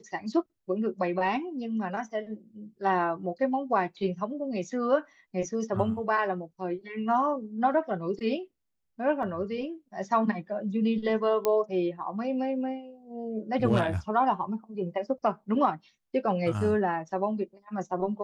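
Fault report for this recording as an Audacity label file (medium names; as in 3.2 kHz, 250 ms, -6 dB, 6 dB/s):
9.230000	9.230000	dropout 2.1 ms
11.450000	11.450000	pop -13 dBFS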